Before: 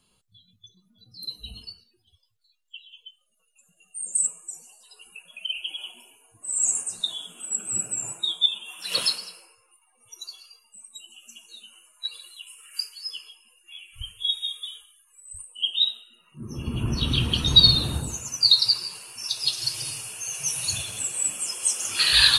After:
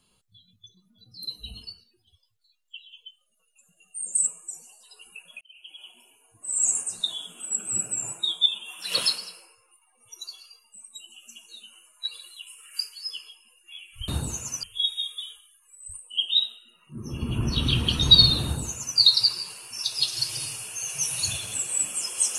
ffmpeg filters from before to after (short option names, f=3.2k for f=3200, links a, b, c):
-filter_complex "[0:a]asplit=4[a][b][c][d];[a]atrim=end=5.41,asetpts=PTS-STARTPTS,afade=t=out:st=5.406:d=0.004:c=hsin[e];[b]atrim=start=5.41:end=14.082,asetpts=PTS-STARTPTS,afade=t=in:d=1.15[f];[c]atrim=start=17.878:end=18.432[g];[d]atrim=start=14.078[h];[e][f]concat=n=2:v=0:a=1[i];[i][g]acrossfade=d=0.004:c1=hsin:c2=hsin[j];[j][h]acrossfade=d=0.004:c1=hsin:c2=hsin"